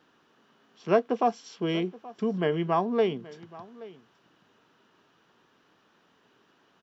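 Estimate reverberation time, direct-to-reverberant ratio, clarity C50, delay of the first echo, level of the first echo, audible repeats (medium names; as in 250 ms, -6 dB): no reverb, no reverb, no reverb, 826 ms, -19.5 dB, 1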